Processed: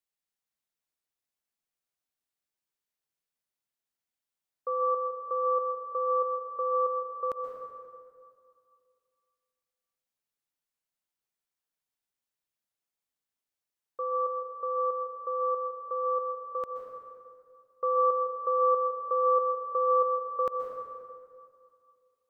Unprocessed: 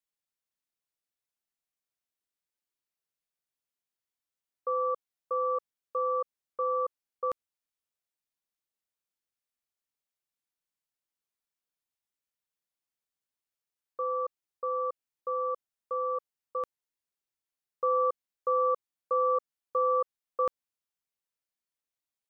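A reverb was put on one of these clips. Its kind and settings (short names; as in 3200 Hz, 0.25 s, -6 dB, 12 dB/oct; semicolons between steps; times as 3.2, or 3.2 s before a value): plate-style reverb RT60 2.3 s, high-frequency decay 0.55×, pre-delay 0.115 s, DRR 3.5 dB; gain -1 dB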